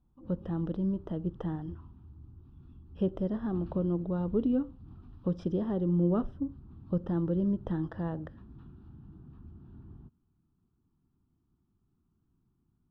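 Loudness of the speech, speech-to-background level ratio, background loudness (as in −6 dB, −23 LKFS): −32.5 LKFS, 19.0 dB, −51.5 LKFS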